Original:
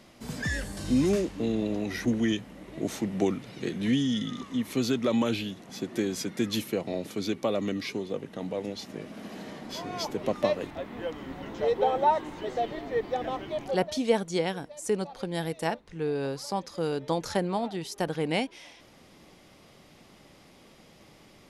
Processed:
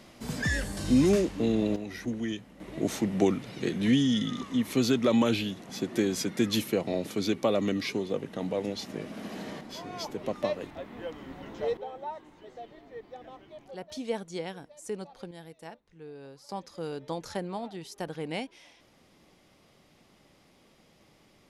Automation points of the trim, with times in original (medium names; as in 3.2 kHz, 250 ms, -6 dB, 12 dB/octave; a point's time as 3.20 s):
+2 dB
from 1.76 s -6.5 dB
from 2.60 s +2 dB
from 9.61 s -4 dB
from 11.77 s -15 dB
from 13.90 s -8 dB
from 15.31 s -15.5 dB
from 16.49 s -6.5 dB